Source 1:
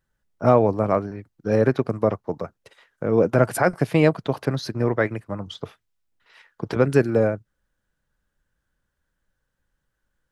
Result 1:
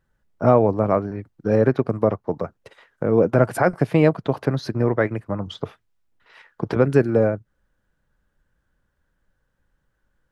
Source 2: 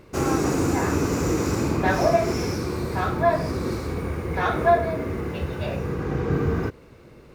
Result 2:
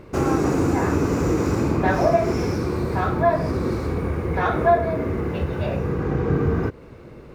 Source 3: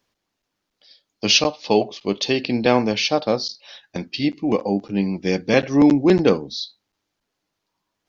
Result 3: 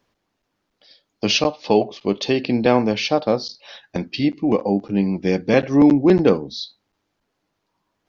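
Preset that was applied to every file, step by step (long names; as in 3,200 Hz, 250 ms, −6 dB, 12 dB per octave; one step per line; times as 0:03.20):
high-shelf EQ 2,700 Hz −9 dB
in parallel at +0.5 dB: downward compressor, threshold −30 dBFS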